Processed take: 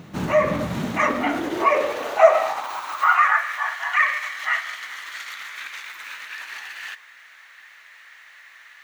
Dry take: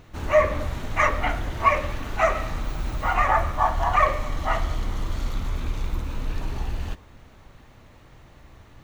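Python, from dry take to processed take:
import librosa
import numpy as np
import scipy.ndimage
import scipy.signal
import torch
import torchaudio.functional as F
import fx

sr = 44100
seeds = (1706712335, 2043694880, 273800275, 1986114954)

p1 = fx.over_compress(x, sr, threshold_db=-28.0, ratio=-1.0)
p2 = x + (p1 * 10.0 ** (-1.5 / 20.0))
p3 = fx.filter_sweep_highpass(p2, sr, from_hz=170.0, to_hz=1800.0, start_s=0.73, end_s=3.52, q=3.7)
y = p3 * 10.0 ** (-1.5 / 20.0)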